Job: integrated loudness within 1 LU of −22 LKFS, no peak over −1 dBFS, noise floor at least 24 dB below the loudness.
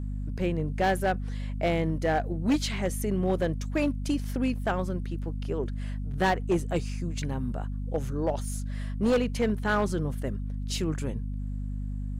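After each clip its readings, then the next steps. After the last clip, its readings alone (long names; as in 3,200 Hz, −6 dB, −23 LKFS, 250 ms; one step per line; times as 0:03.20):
share of clipped samples 1.1%; peaks flattened at −19.0 dBFS; mains hum 50 Hz; hum harmonics up to 250 Hz; level of the hum −30 dBFS; integrated loudness −29.5 LKFS; sample peak −19.0 dBFS; target loudness −22.0 LKFS
→ clipped peaks rebuilt −19 dBFS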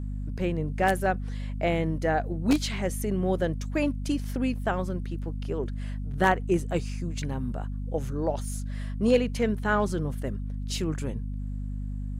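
share of clipped samples 0.0%; mains hum 50 Hz; hum harmonics up to 250 Hz; level of the hum −30 dBFS
→ hum removal 50 Hz, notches 5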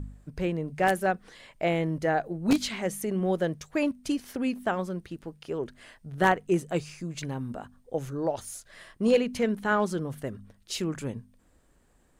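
mains hum none found; integrated loudness −29.5 LKFS; sample peak −9.5 dBFS; target loudness −22.0 LKFS
→ level +7.5 dB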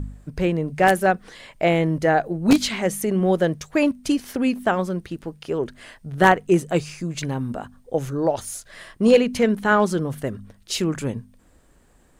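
integrated loudness −22.0 LKFS; sample peak −2.0 dBFS; background noise floor −56 dBFS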